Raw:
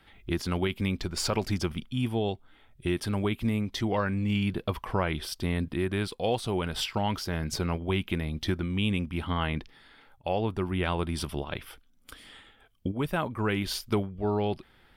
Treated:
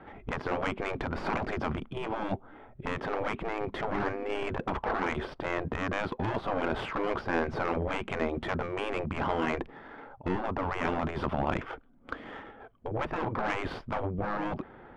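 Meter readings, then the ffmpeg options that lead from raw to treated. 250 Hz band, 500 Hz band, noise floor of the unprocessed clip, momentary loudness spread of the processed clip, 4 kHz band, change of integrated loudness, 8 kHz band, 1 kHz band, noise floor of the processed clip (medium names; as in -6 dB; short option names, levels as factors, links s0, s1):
-5.0 dB, -1.0 dB, -60 dBFS, 10 LU, -9.5 dB, -2.5 dB, under -15 dB, +2.5 dB, -53 dBFS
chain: -filter_complex "[0:a]asplit=2[s0][s1];[s1]highpass=f=720:p=1,volume=14.1,asoftclip=type=tanh:threshold=0.211[s2];[s0][s2]amix=inputs=2:normalize=0,lowpass=f=1100:p=1,volume=0.501,afftfilt=real='re*lt(hypot(re,im),0.158)':imag='im*lt(hypot(re,im),0.158)':win_size=1024:overlap=0.75,adynamicsmooth=sensitivity=1:basefreq=970,volume=2"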